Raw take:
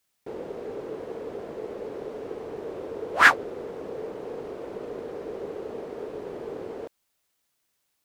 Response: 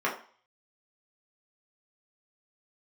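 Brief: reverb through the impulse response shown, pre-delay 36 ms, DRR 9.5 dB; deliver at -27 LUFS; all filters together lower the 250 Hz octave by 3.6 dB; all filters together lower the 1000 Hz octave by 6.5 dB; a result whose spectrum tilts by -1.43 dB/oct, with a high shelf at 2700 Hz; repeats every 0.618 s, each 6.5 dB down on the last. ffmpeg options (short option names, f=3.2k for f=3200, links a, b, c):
-filter_complex "[0:a]equalizer=f=250:t=o:g=-4.5,equalizer=f=1k:t=o:g=-8,highshelf=f=2.7k:g=-5,aecho=1:1:618|1236|1854|2472|3090|3708:0.473|0.222|0.105|0.0491|0.0231|0.0109,asplit=2[a][b];[1:a]atrim=start_sample=2205,adelay=36[c];[b][c]afir=irnorm=-1:irlink=0,volume=-21dB[d];[a][d]amix=inputs=2:normalize=0,volume=5dB"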